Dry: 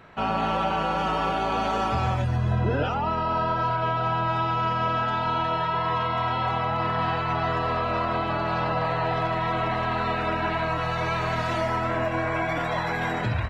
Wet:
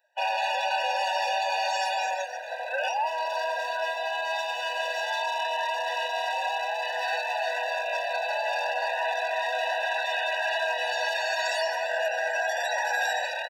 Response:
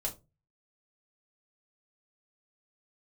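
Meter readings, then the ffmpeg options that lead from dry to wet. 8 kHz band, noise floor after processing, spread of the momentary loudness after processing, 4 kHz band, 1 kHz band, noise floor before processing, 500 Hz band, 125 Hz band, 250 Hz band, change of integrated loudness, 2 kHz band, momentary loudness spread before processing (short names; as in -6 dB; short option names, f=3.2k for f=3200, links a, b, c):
n/a, -33 dBFS, 3 LU, +4.5 dB, -3.5 dB, -27 dBFS, -1.0 dB, under -40 dB, under -40 dB, -2.0 dB, +3.5 dB, 2 LU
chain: -filter_complex "[0:a]acrossover=split=440|860[a][b][c];[a]tremolo=f=0.83:d=0.79[d];[b]alimiter=level_in=6.5dB:limit=-24dB:level=0:latency=1,volume=-6.5dB[e];[d][e][c]amix=inputs=3:normalize=0,aemphasis=mode=production:type=75kf,asplit=2[f][g];[g]acrusher=bits=4:mix=0:aa=0.000001,volume=-7dB[h];[f][h]amix=inputs=2:normalize=0,afftdn=nr=21:nf=-37,asoftclip=type=hard:threshold=-18dB,equalizer=f=5.3k:t=o:w=0.31:g=6,asplit=2[i][j];[j]adelay=220,highpass=300,lowpass=3.4k,asoftclip=type=hard:threshold=-25dB,volume=-18dB[k];[i][k]amix=inputs=2:normalize=0,afftfilt=real='re*eq(mod(floor(b*sr/1024/490),2),1)':imag='im*eq(mod(floor(b*sr/1024/490),2),1)':win_size=1024:overlap=0.75"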